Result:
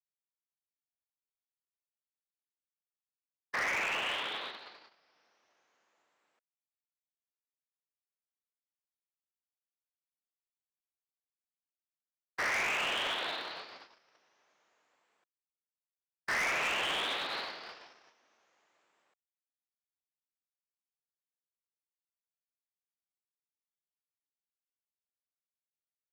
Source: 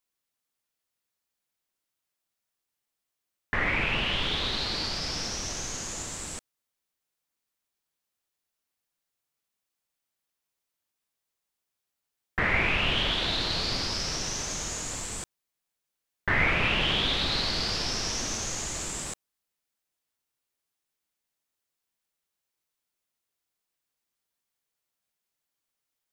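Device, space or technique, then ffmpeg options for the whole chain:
walkie-talkie: -af "highpass=570,lowpass=2.3k,asoftclip=type=hard:threshold=-29dB,agate=range=-31dB:threshold=-35dB:ratio=16:detection=peak"

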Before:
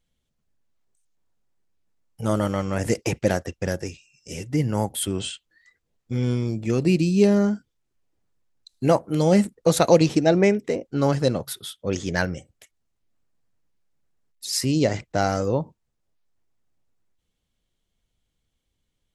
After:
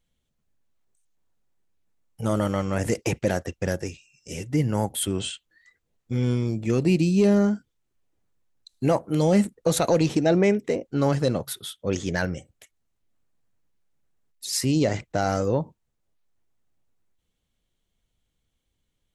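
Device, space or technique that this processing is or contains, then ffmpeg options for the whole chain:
soft clipper into limiter: -af "asoftclip=type=tanh:threshold=-4.5dB,alimiter=limit=-11.5dB:level=0:latency=1:release=23,equalizer=f=5k:t=o:w=0.29:g=-3"

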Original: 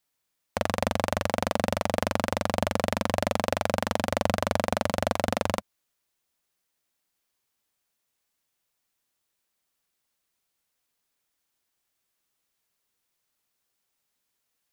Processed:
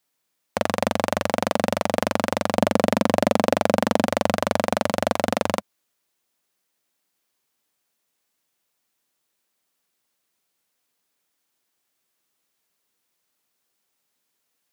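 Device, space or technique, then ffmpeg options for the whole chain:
filter by subtraction: -filter_complex "[0:a]asettb=1/sr,asplit=3[a][b][c];[a]atrim=end=2.584[d];[b]atrim=start=2.58:end=4.06,asetpts=PTS-STARTPTS,afade=t=in:d=0.004:c=qsin,afade=t=out:st=1.476:d=0.004:c=qsin,equalizer=f=280:w=0.57:g=5.5[e];[c]atrim=start=4.056[f];[d][e]acrossfade=d=0.004:c1=hsin:c2=qsin[g];[g][f]acrossfade=d=0.004:c1=qsin:c2=hsin,asplit=2[h][i];[i]lowpass=250,volume=-1[j];[h][j]amix=inputs=2:normalize=0,volume=3.5dB"

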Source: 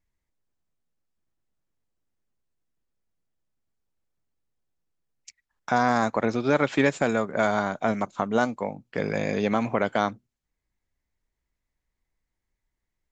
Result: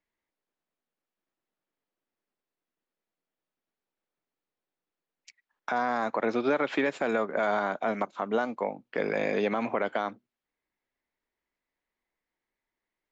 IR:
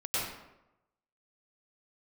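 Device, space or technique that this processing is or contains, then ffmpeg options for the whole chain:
DJ mixer with the lows and highs turned down: -filter_complex "[0:a]acrossover=split=230 4300:gain=0.1 1 0.158[a][b][c];[a][b][c]amix=inputs=3:normalize=0,alimiter=limit=-18dB:level=0:latency=1:release=79,volume=1.5dB"

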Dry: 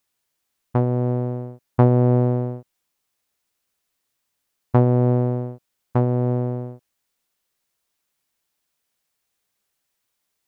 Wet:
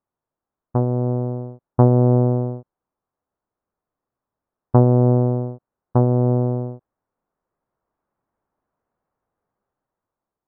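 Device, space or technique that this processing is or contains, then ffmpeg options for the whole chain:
action camera in a waterproof case: -af "lowpass=f=1.2k:w=0.5412,lowpass=f=1.2k:w=1.3066,dynaudnorm=f=530:g=5:m=8.5dB" -ar 24000 -c:a aac -b:a 96k

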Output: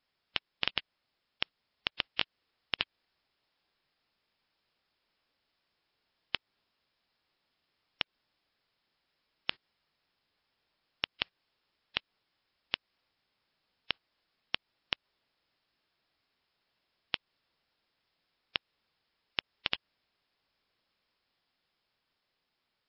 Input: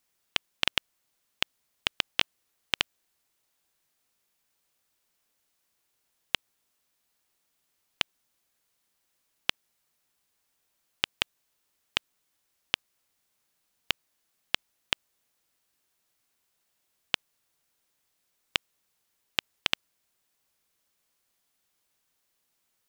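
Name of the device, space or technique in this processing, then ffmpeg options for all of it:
low-bitrate web radio: -af "dynaudnorm=f=550:g=7:m=14.5dB,alimiter=limit=-7.5dB:level=0:latency=1:release=139" -ar 12000 -c:a libmp3lame -b:a 32k

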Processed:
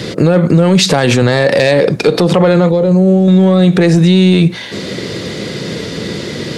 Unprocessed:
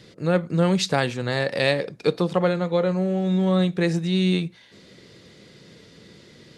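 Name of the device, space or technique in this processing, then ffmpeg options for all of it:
mastering chain: -filter_complex "[0:a]highpass=f=53:w=0.5412,highpass=f=53:w=1.3066,equalizer=f=400:t=o:w=2.5:g=3,acompressor=threshold=-20dB:ratio=3,asoftclip=type=tanh:threshold=-13.5dB,asoftclip=type=hard:threshold=-15.5dB,alimiter=level_in=26.5dB:limit=-1dB:release=50:level=0:latency=1,asettb=1/sr,asplit=3[a][b][c];[a]atrim=end=2.694[d];[b]atrim=start=2.69:end=3.28,asetpts=PTS-STARTPTS,afade=t=in:d=0.004:c=qsin,afade=t=out:st=0.586:d=0.004:c=qsin,equalizer=f=1.7k:t=o:w=2.2:g=-13.5[e];[c]atrim=start=3.276[f];[d][e]acrossfade=d=0.004:c1=hsin:c2=qsin[g];[g][f]acrossfade=d=0.004:c1=qsin:c2=hsin,volume=-1dB"

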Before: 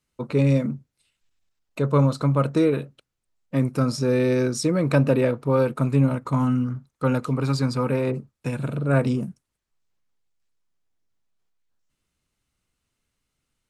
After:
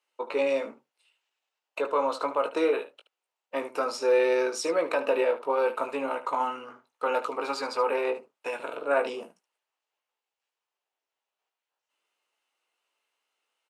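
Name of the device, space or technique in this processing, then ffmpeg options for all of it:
laptop speaker: -af "highpass=f=440:w=0.5412,highpass=f=440:w=1.3066,equalizer=f=870:t=o:w=0.52:g=6,equalizer=f=2.8k:t=o:w=0.34:g=7,alimiter=limit=-15.5dB:level=0:latency=1:release=75,highshelf=f=4.7k:g=-8.5,aecho=1:1:18|74:0.447|0.224"

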